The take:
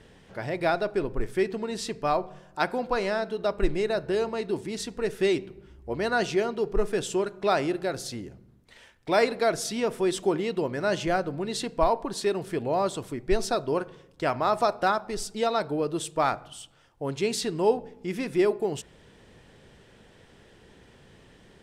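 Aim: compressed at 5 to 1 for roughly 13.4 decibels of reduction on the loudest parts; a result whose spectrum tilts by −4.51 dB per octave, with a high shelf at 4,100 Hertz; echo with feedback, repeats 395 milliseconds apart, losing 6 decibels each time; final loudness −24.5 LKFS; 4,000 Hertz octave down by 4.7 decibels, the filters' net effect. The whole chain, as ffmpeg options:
ffmpeg -i in.wav -af "equalizer=frequency=4000:width_type=o:gain=-8,highshelf=frequency=4100:gain=3.5,acompressor=threshold=-32dB:ratio=5,aecho=1:1:395|790|1185|1580|1975|2370:0.501|0.251|0.125|0.0626|0.0313|0.0157,volume=11dB" out.wav

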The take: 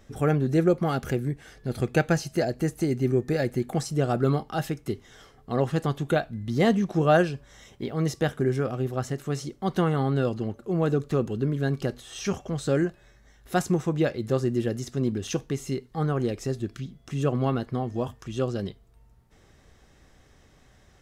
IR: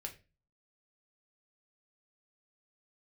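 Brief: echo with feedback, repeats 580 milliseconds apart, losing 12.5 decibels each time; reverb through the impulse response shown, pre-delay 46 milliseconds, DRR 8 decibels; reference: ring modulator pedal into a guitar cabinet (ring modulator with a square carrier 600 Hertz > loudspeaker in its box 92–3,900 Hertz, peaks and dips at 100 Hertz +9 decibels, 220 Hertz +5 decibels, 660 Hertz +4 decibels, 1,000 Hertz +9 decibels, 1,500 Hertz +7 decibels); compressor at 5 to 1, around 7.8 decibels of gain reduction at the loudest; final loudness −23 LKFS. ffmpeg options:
-filter_complex "[0:a]acompressor=threshold=-24dB:ratio=5,aecho=1:1:580|1160|1740:0.237|0.0569|0.0137,asplit=2[link_01][link_02];[1:a]atrim=start_sample=2205,adelay=46[link_03];[link_02][link_03]afir=irnorm=-1:irlink=0,volume=-5.5dB[link_04];[link_01][link_04]amix=inputs=2:normalize=0,aeval=exprs='val(0)*sgn(sin(2*PI*600*n/s))':channel_layout=same,highpass=92,equalizer=frequency=100:width_type=q:width=4:gain=9,equalizer=frequency=220:width_type=q:width=4:gain=5,equalizer=frequency=660:width_type=q:width=4:gain=4,equalizer=frequency=1000:width_type=q:width=4:gain=9,equalizer=frequency=1500:width_type=q:width=4:gain=7,lowpass=frequency=3900:width=0.5412,lowpass=frequency=3900:width=1.3066,volume=2dB"

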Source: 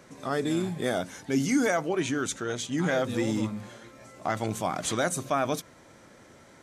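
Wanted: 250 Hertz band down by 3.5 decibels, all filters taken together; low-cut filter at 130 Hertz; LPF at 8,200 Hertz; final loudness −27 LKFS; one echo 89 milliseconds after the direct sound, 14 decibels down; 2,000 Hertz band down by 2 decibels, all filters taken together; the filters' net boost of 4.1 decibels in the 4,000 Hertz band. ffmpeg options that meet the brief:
ffmpeg -i in.wav -af "highpass=130,lowpass=8200,equalizer=frequency=250:width_type=o:gain=-4,equalizer=frequency=2000:width_type=o:gain=-4,equalizer=frequency=4000:width_type=o:gain=6.5,aecho=1:1:89:0.2,volume=3dB" out.wav

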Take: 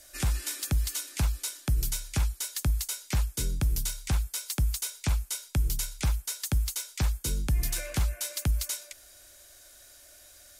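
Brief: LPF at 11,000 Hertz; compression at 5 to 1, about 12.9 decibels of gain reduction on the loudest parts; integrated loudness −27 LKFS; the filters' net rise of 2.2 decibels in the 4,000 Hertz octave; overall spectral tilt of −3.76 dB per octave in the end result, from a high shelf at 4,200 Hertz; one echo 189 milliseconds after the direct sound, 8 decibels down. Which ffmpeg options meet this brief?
ffmpeg -i in.wav -af "lowpass=11000,equalizer=frequency=4000:width_type=o:gain=6.5,highshelf=frequency=4200:gain=-6,acompressor=threshold=-37dB:ratio=5,aecho=1:1:189:0.398,volume=13dB" out.wav

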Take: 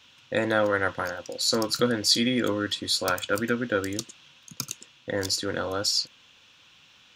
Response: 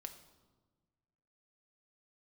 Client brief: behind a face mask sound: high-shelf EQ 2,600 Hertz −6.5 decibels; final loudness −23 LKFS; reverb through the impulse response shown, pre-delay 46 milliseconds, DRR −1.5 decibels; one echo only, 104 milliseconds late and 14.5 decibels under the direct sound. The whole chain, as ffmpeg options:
-filter_complex "[0:a]aecho=1:1:104:0.188,asplit=2[link_01][link_02];[1:a]atrim=start_sample=2205,adelay=46[link_03];[link_02][link_03]afir=irnorm=-1:irlink=0,volume=6dB[link_04];[link_01][link_04]amix=inputs=2:normalize=0,highshelf=frequency=2600:gain=-6.5,volume=1dB"

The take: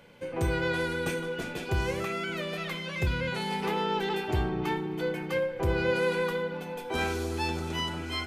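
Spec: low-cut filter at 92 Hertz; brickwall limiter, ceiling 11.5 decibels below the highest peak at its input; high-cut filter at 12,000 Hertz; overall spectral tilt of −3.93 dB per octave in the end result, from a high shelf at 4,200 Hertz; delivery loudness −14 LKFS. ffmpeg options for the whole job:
ffmpeg -i in.wav -af "highpass=92,lowpass=12000,highshelf=frequency=4200:gain=-6.5,volume=22dB,alimiter=limit=-5.5dB:level=0:latency=1" out.wav

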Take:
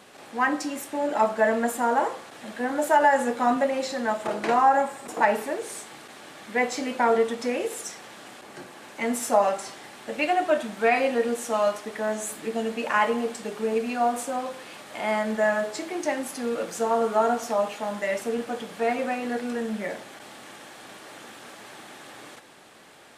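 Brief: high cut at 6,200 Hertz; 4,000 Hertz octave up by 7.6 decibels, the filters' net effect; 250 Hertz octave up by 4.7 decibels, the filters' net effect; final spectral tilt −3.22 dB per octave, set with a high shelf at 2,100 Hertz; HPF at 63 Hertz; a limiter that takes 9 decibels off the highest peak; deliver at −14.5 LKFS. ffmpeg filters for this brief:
ffmpeg -i in.wav -af "highpass=63,lowpass=6200,equalizer=frequency=250:width_type=o:gain=5,highshelf=frequency=2100:gain=6.5,equalizer=frequency=4000:width_type=o:gain=4.5,volume=11dB,alimiter=limit=-3.5dB:level=0:latency=1" out.wav

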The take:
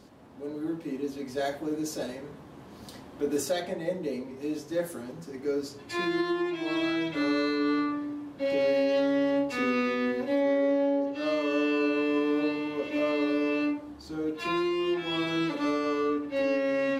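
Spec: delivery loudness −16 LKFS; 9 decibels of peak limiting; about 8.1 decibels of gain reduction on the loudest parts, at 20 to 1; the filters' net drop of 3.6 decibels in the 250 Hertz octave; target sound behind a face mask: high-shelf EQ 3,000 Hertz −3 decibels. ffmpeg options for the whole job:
ffmpeg -i in.wav -af "equalizer=frequency=250:width_type=o:gain=-4.5,acompressor=threshold=-31dB:ratio=20,alimiter=level_in=8dB:limit=-24dB:level=0:latency=1,volume=-8dB,highshelf=frequency=3000:gain=-3,volume=24.5dB" out.wav

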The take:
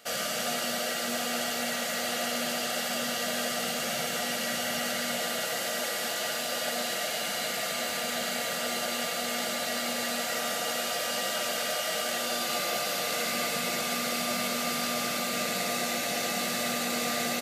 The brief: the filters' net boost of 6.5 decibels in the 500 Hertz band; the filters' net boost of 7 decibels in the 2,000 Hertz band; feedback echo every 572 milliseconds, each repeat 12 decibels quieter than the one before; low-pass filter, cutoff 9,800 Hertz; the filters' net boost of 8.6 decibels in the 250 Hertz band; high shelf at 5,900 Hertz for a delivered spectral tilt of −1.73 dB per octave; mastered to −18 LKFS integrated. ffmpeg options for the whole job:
ffmpeg -i in.wav -af "lowpass=9800,equalizer=frequency=250:width_type=o:gain=8,equalizer=frequency=500:width_type=o:gain=6,equalizer=frequency=2000:width_type=o:gain=7.5,highshelf=frequency=5900:gain=4.5,aecho=1:1:572|1144|1716:0.251|0.0628|0.0157,volume=6dB" out.wav

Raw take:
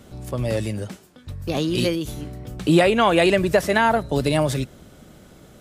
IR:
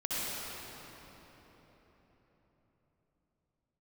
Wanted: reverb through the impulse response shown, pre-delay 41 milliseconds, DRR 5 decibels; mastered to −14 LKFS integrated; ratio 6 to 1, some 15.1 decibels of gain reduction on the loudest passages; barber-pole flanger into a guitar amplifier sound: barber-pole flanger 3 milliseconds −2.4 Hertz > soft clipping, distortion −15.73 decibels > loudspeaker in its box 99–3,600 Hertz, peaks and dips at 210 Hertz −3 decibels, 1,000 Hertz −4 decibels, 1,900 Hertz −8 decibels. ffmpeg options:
-filter_complex "[0:a]acompressor=threshold=-29dB:ratio=6,asplit=2[link_01][link_02];[1:a]atrim=start_sample=2205,adelay=41[link_03];[link_02][link_03]afir=irnorm=-1:irlink=0,volume=-12.5dB[link_04];[link_01][link_04]amix=inputs=2:normalize=0,asplit=2[link_05][link_06];[link_06]adelay=3,afreqshift=-2.4[link_07];[link_05][link_07]amix=inputs=2:normalize=1,asoftclip=threshold=-28.5dB,highpass=99,equalizer=frequency=210:width_type=q:width=4:gain=-3,equalizer=frequency=1000:width_type=q:width=4:gain=-4,equalizer=frequency=1900:width_type=q:width=4:gain=-8,lowpass=frequency=3600:width=0.5412,lowpass=frequency=3600:width=1.3066,volume=25dB"

